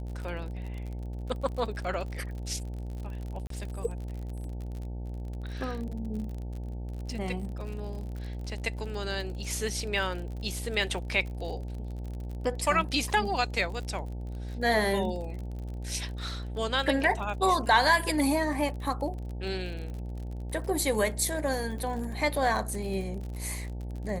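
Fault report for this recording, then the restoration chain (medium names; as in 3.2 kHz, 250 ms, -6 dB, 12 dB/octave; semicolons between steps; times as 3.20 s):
buzz 60 Hz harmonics 15 -36 dBFS
crackle 46 per s -37 dBFS
3.47–3.50 s: dropout 33 ms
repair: de-click; de-hum 60 Hz, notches 15; interpolate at 3.47 s, 33 ms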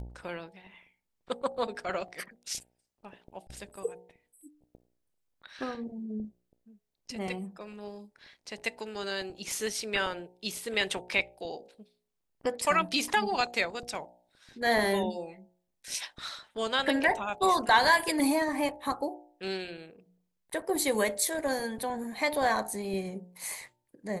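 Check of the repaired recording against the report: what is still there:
nothing left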